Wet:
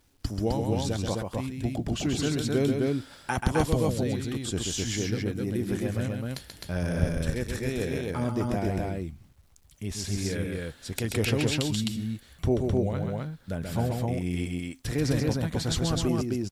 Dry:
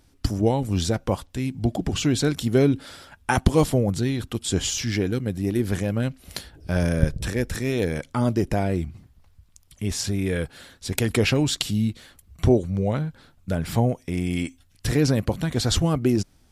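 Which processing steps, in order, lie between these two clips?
loudspeakers that aren't time-aligned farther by 46 metres −5 dB, 89 metres −2 dB
bit-depth reduction 10 bits, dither none
level −7.5 dB

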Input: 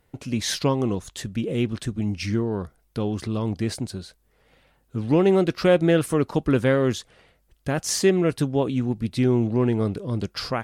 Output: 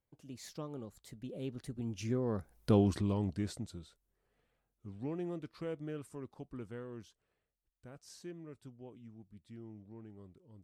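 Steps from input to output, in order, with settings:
source passing by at 0:02.70, 34 m/s, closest 6.9 metres
parametric band 2,800 Hz −4 dB 2.1 octaves

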